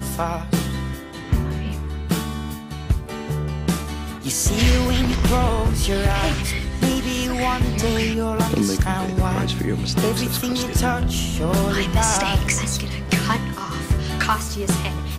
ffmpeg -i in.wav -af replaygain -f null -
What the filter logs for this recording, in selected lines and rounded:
track_gain = +4.2 dB
track_peak = 0.237